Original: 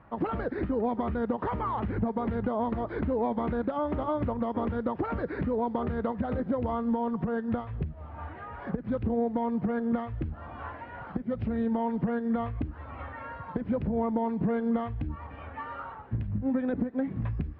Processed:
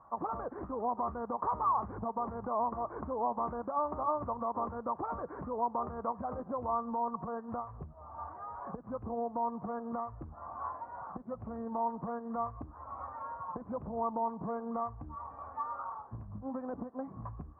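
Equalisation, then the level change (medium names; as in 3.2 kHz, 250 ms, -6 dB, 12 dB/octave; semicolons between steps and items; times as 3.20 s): four-pole ladder low-pass 1.2 kHz, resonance 75%; peaking EQ 720 Hz +8.5 dB 0.99 oct; -1.5 dB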